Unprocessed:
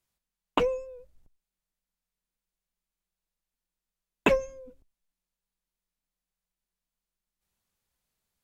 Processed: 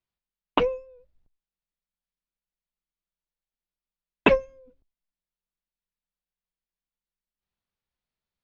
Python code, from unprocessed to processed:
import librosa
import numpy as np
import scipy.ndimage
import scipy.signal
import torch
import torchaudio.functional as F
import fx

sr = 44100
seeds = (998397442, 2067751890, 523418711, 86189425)

y = scipy.signal.sosfilt(scipy.signal.butter(4, 4600.0, 'lowpass', fs=sr, output='sos'), x)
y = fx.upward_expand(y, sr, threshold_db=-41.0, expansion=1.5)
y = F.gain(torch.from_numpy(y), 5.0).numpy()